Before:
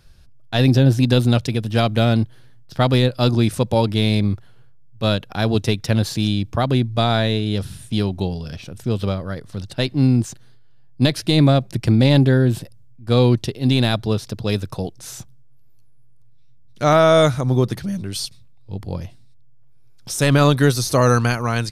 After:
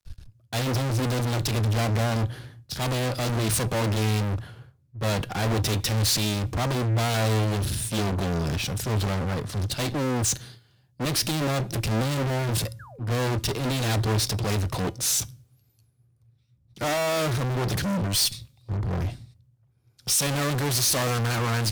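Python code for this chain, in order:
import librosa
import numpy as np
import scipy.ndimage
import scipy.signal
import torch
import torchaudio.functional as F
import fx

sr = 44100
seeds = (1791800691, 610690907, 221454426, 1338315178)

y = fx.fuzz(x, sr, gain_db=40.0, gate_db=-49.0)
y = fx.spec_paint(y, sr, seeds[0], shape='fall', start_s=12.79, length_s=0.25, low_hz=270.0, high_hz=1800.0, level_db=-28.0)
y = fx.comb_fb(y, sr, f0_hz=110.0, decay_s=0.33, harmonics='odd', damping=0.0, mix_pct=40)
y = fx.band_widen(y, sr, depth_pct=70)
y = y * 10.0 ** (-7.0 / 20.0)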